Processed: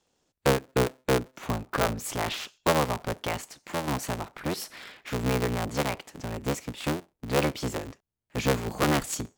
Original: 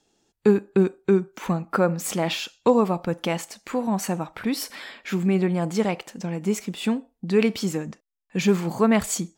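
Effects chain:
sub-harmonics by changed cycles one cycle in 3, inverted
level −5.5 dB

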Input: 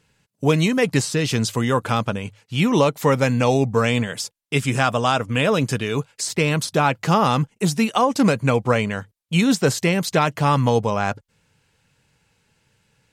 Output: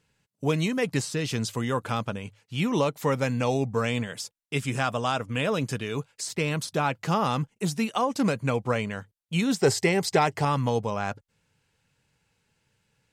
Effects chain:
0:09.59–0:10.45: thirty-one-band graphic EQ 100 Hz +10 dB, 400 Hz +11 dB, 800 Hz +10 dB, 2,000 Hz +7 dB, 5,000 Hz +8 dB, 8,000 Hz +7 dB
level −7.5 dB

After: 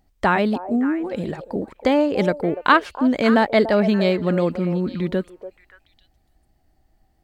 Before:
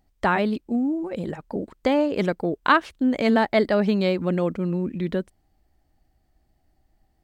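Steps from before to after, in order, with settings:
echo through a band-pass that steps 288 ms, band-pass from 610 Hz, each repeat 1.4 octaves, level −8.5 dB
level +3 dB

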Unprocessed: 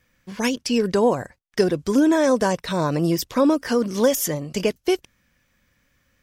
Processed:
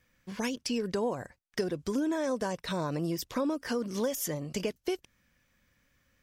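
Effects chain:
downward compressor 2.5 to 1, threshold −26 dBFS, peak gain reduction 9 dB
level −5 dB

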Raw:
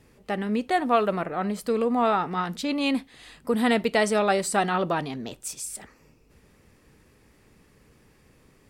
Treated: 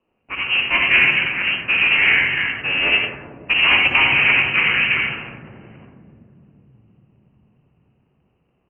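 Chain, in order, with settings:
sub-harmonics by changed cycles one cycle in 3, inverted
high-pass filter 190 Hz 6 dB per octave
in parallel at −5 dB: sample-rate reduction 2,100 Hz, jitter 20%
on the sum: voice inversion scrambler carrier 3,000 Hz
far-end echo of a speakerphone 110 ms, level −29 dB
convolution reverb RT60 3.6 s, pre-delay 59 ms, DRR 1 dB
low-pass that shuts in the quiet parts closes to 470 Hz, open at −7 dBFS
level −4 dB

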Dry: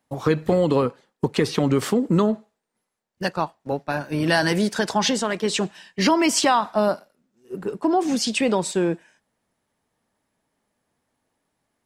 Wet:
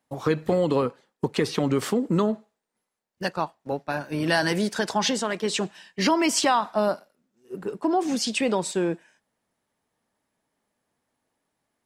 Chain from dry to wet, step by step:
low-shelf EQ 140 Hz −4.5 dB
level −2.5 dB

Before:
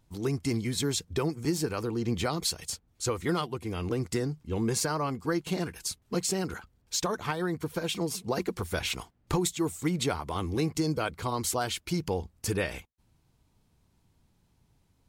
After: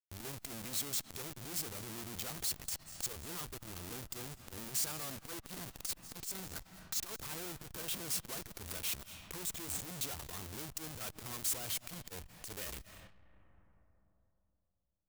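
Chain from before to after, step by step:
comparator with hysteresis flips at −39.5 dBFS
on a send at −12 dB: parametric band 410 Hz −13 dB 0.67 octaves + convolution reverb RT60 2.9 s, pre-delay 159 ms
on the sum: downward compressor 6 to 1, threshold −37 dBFS, peak gain reduction 7.5 dB
first-order pre-emphasis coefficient 0.8
saturating transformer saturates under 830 Hz
level +5 dB

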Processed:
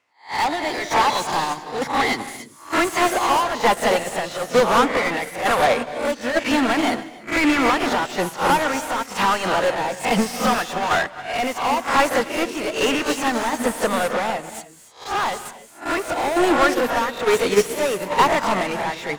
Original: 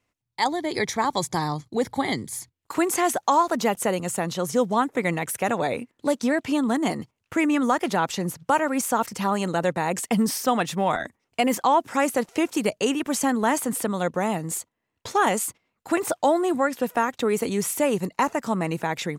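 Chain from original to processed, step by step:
peak hold with a rise ahead of every peak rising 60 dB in 0.32 s
low-shelf EQ 480 Hz −5 dB
mid-hump overdrive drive 34 dB, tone 2,500 Hz, clips at −5 dBFS
shaped tremolo saw down 1.1 Hz, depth 40%
reverb whose tail is shaped and stops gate 320 ms rising, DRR 6 dB
expander for the loud parts 2.5 to 1, over −22 dBFS

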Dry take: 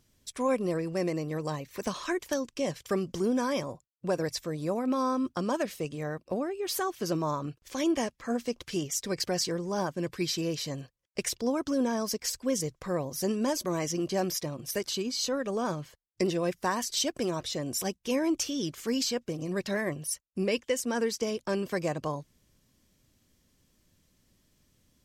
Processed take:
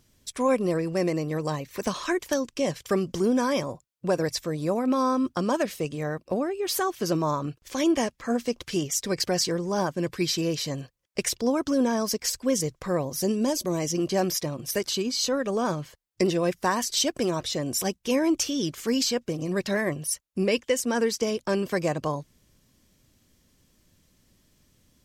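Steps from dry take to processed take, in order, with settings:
0:13.15–0:13.95: dynamic equaliser 1,400 Hz, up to −8 dB, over −48 dBFS, Q 0.96
level +4.5 dB

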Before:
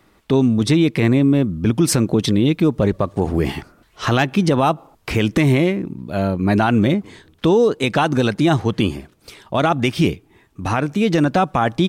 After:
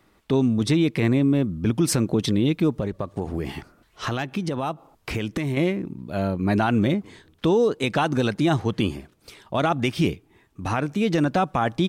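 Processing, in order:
0:02.79–0:05.57: downward compressor 3 to 1, threshold −20 dBFS, peak gain reduction 7 dB
level −5 dB

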